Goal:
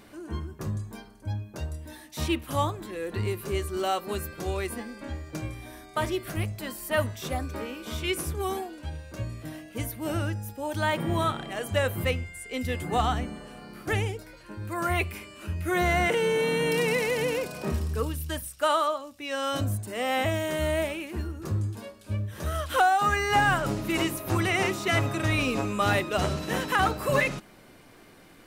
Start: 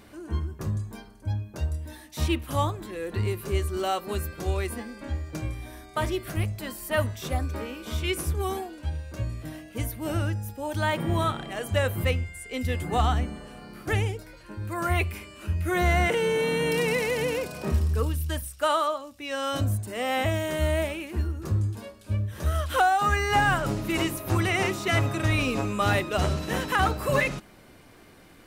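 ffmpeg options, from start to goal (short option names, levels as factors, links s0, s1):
-af "equalizer=f=62:w=1.2:g=-7.5"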